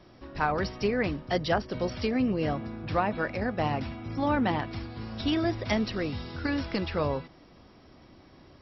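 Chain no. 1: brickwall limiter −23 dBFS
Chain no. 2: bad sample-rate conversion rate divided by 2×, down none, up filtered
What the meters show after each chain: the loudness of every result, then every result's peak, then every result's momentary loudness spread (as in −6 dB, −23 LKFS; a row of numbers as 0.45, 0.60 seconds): −33.5, −30.0 LKFS; −23.0, −13.0 dBFS; 5, 7 LU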